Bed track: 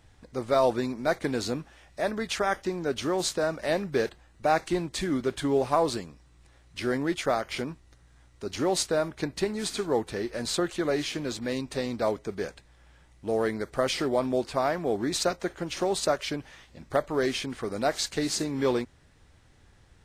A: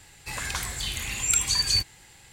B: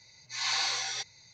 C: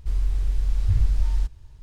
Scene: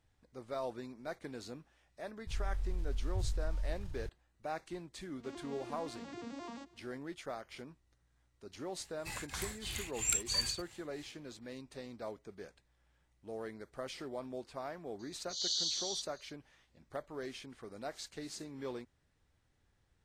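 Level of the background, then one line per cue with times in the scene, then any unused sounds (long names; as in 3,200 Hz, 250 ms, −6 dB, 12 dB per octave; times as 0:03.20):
bed track −16.5 dB
0:02.27: mix in C −17.5 dB + envelope flattener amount 70%
0:05.17: mix in C −9.5 dB + vocoder with an arpeggio as carrier minor triad, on A#3, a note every 87 ms
0:08.79: mix in A −8 dB + tremolo along a rectified sine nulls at 3.1 Hz
0:14.99: mix in B −3 dB + Chebyshev high-pass filter 3,000 Hz, order 10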